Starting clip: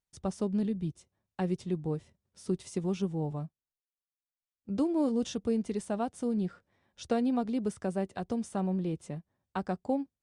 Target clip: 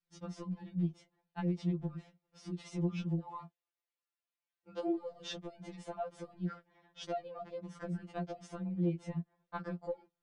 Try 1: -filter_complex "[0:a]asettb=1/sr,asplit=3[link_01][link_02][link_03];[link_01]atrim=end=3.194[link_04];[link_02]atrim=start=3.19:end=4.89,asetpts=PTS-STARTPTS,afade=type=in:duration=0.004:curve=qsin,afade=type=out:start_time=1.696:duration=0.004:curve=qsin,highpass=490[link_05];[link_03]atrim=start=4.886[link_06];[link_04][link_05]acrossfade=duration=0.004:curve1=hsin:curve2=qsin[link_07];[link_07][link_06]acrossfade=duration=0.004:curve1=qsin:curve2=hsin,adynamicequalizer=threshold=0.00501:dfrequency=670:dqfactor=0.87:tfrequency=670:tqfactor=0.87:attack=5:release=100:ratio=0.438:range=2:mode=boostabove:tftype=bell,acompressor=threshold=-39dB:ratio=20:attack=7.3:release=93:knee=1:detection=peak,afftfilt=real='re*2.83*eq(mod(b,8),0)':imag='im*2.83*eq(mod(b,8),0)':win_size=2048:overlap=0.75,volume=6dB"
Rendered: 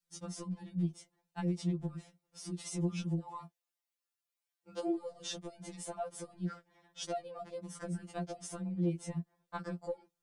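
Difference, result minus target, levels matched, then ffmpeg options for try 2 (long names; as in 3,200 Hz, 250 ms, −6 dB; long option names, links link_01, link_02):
4,000 Hz band +2.5 dB
-filter_complex "[0:a]asettb=1/sr,asplit=3[link_01][link_02][link_03];[link_01]atrim=end=3.194[link_04];[link_02]atrim=start=3.19:end=4.89,asetpts=PTS-STARTPTS,afade=type=in:duration=0.004:curve=qsin,afade=type=out:start_time=1.696:duration=0.004:curve=qsin,highpass=490[link_05];[link_03]atrim=start=4.886[link_06];[link_04][link_05]acrossfade=duration=0.004:curve1=hsin:curve2=qsin[link_07];[link_07][link_06]acrossfade=duration=0.004:curve1=qsin:curve2=hsin,adynamicequalizer=threshold=0.00501:dfrequency=670:dqfactor=0.87:tfrequency=670:tqfactor=0.87:attack=5:release=100:ratio=0.438:range=2:mode=boostabove:tftype=bell,lowpass=3500,acompressor=threshold=-39dB:ratio=20:attack=7.3:release=93:knee=1:detection=peak,afftfilt=real='re*2.83*eq(mod(b,8),0)':imag='im*2.83*eq(mod(b,8),0)':win_size=2048:overlap=0.75,volume=6dB"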